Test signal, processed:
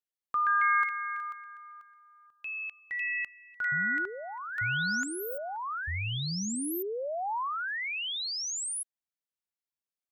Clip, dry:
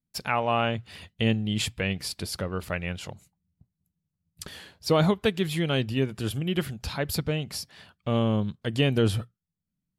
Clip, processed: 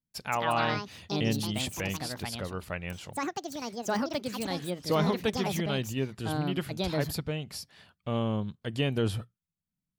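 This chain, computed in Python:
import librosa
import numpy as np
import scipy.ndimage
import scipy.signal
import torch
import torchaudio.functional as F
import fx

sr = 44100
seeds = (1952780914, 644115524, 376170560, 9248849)

y = fx.dynamic_eq(x, sr, hz=940.0, q=2.1, threshold_db=-42.0, ratio=4.0, max_db=3)
y = fx.echo_pitch(y, sr, ms=211, semitones=5, count=2, db_per_echo=-3.0)
y = y * 10.0 ** (-5.5 / 20.0)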